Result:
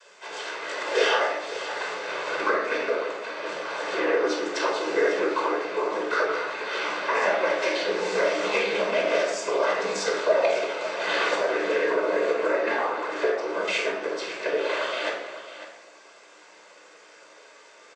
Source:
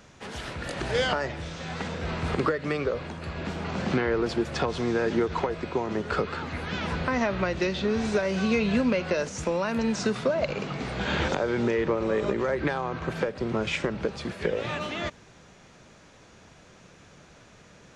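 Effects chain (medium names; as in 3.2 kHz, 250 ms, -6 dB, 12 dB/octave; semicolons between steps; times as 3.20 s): high-pass 460 Hz 24 dB/octave; noise-vocoded speech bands 16; doubling 16 ms -10.5 dB; delay 549 ms -13 dB; simulated room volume 2400 m³, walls furnished, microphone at 5.1 m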